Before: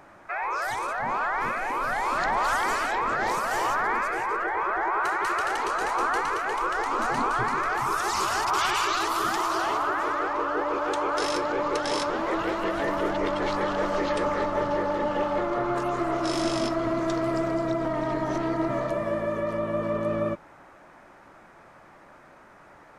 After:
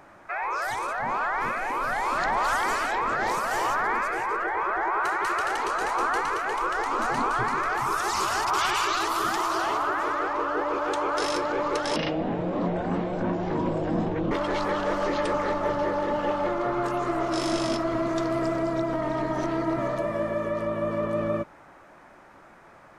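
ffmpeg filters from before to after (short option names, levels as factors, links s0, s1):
-filter_complex "[0:a]asplit=3[s0][s1][s2];[s0]atrim=end=11.964[s3];[s1]atrim=start=11.96:end=13.23,asetpts=PTS-STARTPTS,asetrate=23814,aresample=44100[s4];[s2]atrim=start=13.226[s5];[s3][s4]acrossfade=d=0.004:c1=hsin:c2=hsin[s6];[s6][s5]acrossfade=d=0.004:c1=hsin:c2=hsin"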